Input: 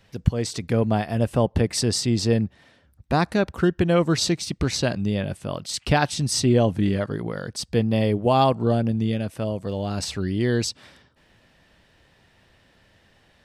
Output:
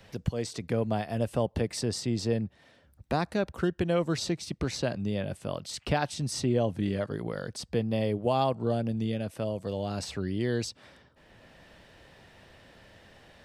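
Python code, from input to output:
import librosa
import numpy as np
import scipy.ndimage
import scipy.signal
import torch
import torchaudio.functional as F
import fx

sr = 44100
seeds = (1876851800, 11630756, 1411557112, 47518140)

y = fx.peak_eq(x, sr, hz=570.0, db=3.5, octaves=1.0)
y = fx.band_squash(y, sr, depth_pct=40)
y = F.gain(torch.from_numpy(y), -8.5).numpy()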